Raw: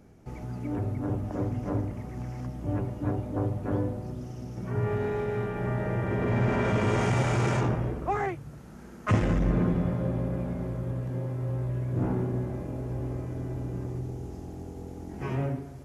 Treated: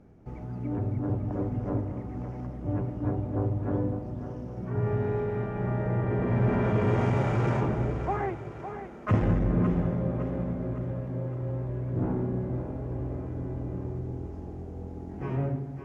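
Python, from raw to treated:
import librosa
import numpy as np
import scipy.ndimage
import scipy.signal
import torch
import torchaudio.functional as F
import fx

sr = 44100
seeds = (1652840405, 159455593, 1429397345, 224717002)

y = fx.quant_float(x, sr, bits=6)
y = fx.lowpass(y, sr, hz=1300.0, slope=6)
y = fx.echo_split(y, sr, split_hz=320.0, low_ms=156, high_ms=558, feedback_pct=52, wet_db=-9.5)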